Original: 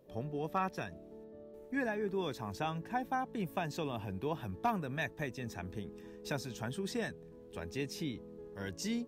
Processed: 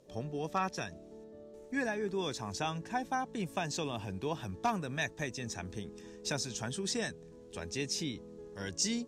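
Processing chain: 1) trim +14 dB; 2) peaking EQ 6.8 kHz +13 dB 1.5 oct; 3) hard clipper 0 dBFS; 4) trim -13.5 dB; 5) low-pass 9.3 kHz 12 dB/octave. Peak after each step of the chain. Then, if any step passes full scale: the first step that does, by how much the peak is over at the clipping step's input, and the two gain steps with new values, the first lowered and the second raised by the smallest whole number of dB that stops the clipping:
-8.0 dBFS, -5.0 dBFS, -5.0 dBFS, -18.5 dBFS, -19.0 dBFS; nothing clips

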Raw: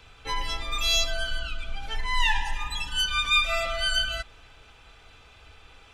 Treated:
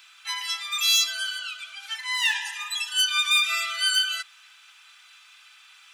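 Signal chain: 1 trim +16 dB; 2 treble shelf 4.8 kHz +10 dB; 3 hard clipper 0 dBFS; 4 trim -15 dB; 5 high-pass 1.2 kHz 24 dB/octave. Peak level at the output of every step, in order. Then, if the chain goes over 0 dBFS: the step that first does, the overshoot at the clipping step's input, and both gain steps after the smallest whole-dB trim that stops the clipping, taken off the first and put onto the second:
+5.0 dBFS, +7.5 dBFS, 0.0 dBFS, -15.0 dBFS, -10.5 dBFS; step 1, 7.5 dB; step 1 +8 dB, step 4 -7 dB

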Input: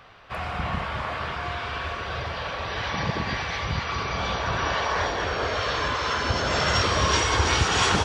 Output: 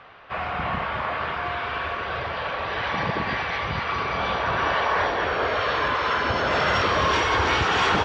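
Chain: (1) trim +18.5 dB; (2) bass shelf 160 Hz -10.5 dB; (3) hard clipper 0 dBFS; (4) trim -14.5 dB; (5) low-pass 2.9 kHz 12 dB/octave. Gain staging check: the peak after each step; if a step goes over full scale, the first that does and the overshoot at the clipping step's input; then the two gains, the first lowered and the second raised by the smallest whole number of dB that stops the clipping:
+10.5 dBFS, +9.5 dBFS, 0.0 dBFS, -14.5 dBFS, -14.0 dBFS; step 1, 9.5 dB; step 1 +8.5 dB, step 4 -4.5 dB

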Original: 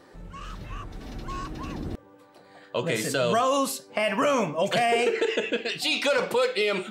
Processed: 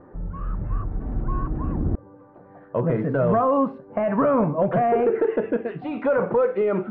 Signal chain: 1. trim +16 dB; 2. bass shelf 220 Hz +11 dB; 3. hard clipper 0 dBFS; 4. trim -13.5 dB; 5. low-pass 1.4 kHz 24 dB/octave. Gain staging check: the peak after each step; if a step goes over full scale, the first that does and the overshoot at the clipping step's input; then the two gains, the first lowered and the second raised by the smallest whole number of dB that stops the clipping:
+5.5 dBFS, +6.5 dBFS, 0.0 dBFS, -13.5 dBFS, -12.5 dBFS; step 1, 6.5 dB; step 1 +9 dB, step 4 -6.5 dB

